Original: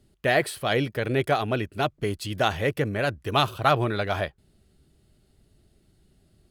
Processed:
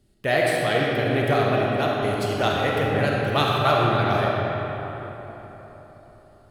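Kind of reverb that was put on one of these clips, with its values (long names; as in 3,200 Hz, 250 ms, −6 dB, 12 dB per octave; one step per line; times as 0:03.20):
comb and all-pass reverb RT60 4.1 s, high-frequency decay 0.55×, pre-delay 5 ms, DRR −3.5 dB
level −1.5 dB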